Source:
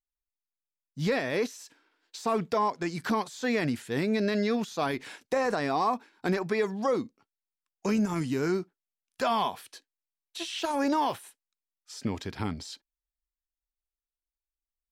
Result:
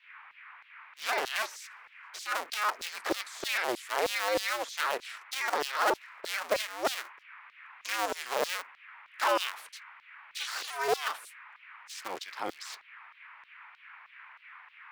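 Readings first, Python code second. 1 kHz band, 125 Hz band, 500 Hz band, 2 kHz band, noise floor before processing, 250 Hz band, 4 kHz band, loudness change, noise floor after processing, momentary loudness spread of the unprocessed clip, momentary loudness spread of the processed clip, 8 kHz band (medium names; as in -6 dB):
-2.0 dB, under -25 dB, -5.0 dB, +3.5 dB, under -85 dBFS, -16.5 dB, +3.5 dB, -2.5 dB, -59 dBFS, 16 LU, 21 LU, +4.5 dB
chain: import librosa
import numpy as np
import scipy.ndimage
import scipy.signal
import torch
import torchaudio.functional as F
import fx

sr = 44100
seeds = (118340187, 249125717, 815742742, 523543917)

y = fx.cycle_switch(x, sr, every=2, mode='inverted')
y = fx.dmg_noise_band(y, sr, seeds[0], low_hz=920.0, high_hz=2400.0, level_db=-52.0)
y = fx.filter_lfo_highpass(y, sr, shape='saw_down', hz=3.2, low_hz=390.0, high_hz=4400.0, q=1.8)
y = y * 10.0 ** (-1.5 / 20.0)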